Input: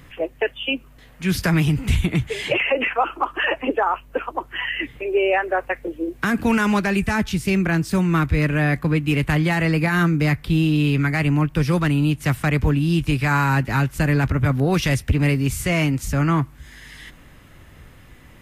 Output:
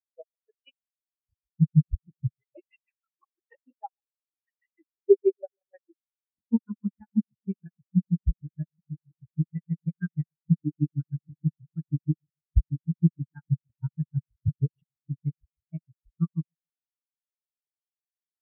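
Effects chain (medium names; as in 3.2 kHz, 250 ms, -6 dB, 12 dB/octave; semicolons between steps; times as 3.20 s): granulator 83 ms, grains 6.3 per s, spray 91 ms, pitch spread up and down by 0 st; on a send: filtered feedback delay 139 ms, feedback 58%, level -16 dB; on the sum: spectral contrast expander 4:1; trim +3 dB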